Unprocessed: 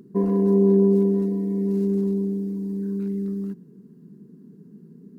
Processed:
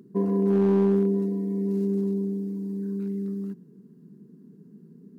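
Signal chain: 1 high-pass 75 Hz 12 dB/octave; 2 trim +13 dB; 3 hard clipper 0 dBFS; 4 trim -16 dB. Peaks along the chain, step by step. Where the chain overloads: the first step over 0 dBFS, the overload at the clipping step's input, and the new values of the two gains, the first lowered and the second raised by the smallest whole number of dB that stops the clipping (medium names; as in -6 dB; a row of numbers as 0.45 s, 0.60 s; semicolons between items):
-9.0 dBFS, +4.0 dBFS, 0.0 dBFS, -16.0 dBFS; step 2, 4.0 dB; step 2 +9 dB, step 4 -12 dB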